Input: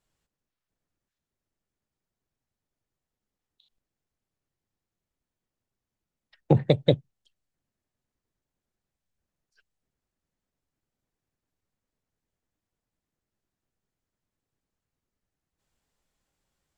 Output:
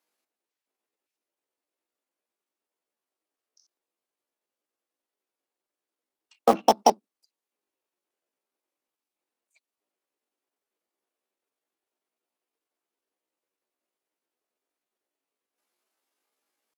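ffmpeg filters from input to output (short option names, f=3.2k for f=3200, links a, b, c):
-filter_complex "[0:a]highpass=f=210:w=0.5412,highpass=f=210:w=1.3066,asetrate=66075,aresample=44100,atempo=0.66742,asplit=2[a][b];[b]acrusher=bits=3:mix=0:aa=0.000001,volume=-8dB[c];[a][c]amix=inputs=2:normalize=0,volume=1dB"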